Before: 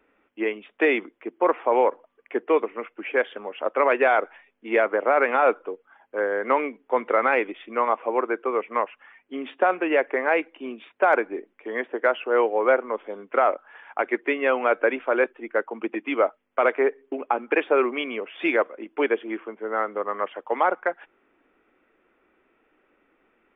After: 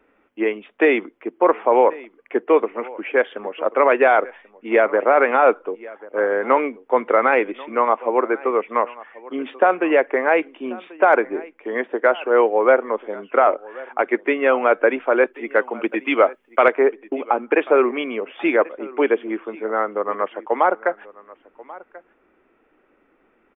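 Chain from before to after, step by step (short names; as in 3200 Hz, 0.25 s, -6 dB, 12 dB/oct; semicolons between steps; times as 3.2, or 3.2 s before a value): high shelf 2300 Hz -6 dB, from 15.34 s +5 dB, from 16.68 s -9 dB; echo 1.087 s -20.5 dB; gain +5.5 dB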